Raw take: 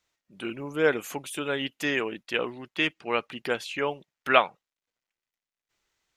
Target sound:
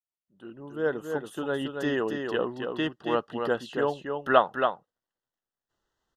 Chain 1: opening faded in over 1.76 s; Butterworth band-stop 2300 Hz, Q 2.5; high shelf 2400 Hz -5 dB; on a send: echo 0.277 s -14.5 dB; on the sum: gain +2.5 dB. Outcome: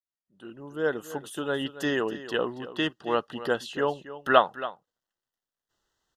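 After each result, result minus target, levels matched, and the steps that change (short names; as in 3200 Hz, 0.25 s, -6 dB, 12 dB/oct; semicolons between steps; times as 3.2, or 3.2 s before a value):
echo-to-direct -9 dB; 4000 Hz band +4.0 dB
change: echo 0.277 s -5.5 dB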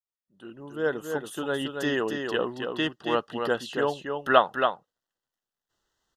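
4000 Hz band +4.0 dB
change: high shelf 2400 Hz -13 dB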